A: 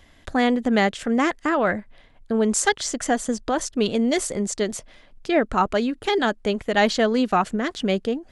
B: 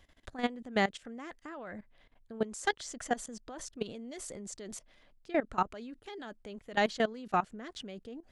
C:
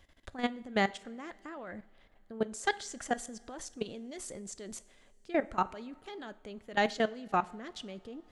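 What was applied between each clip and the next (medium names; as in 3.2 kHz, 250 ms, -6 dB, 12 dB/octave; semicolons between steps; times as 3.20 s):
level held to a coarse grid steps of 18 dB; trim -7.5 dB
two-slope reverb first 0.5 s, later 3.7 s, from -19 dB, DRR 14.5 dB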